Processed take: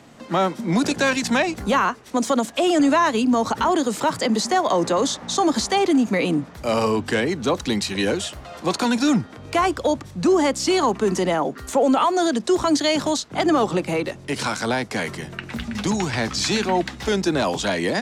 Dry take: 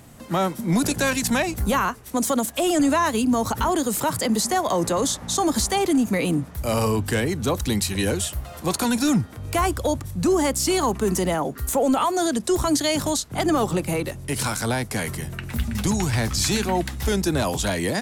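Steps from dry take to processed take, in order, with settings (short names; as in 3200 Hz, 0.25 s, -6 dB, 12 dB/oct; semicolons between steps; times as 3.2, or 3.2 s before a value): three-band isolator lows -15 dB, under 170 Hz, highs -21 dB, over 6700 Hz; gain +3 dB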